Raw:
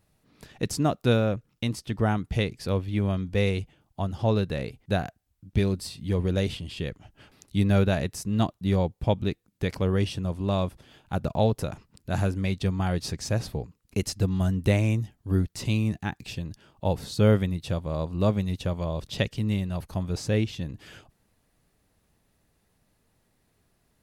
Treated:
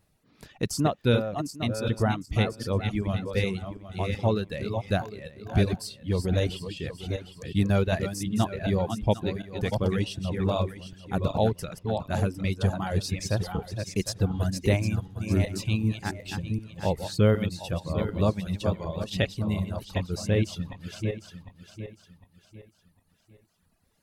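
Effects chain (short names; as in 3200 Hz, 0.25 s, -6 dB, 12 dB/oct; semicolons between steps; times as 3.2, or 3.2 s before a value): regenerating reverse delay 0.377 s, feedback 58%, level -5 dB; reverb removal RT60 1.4 s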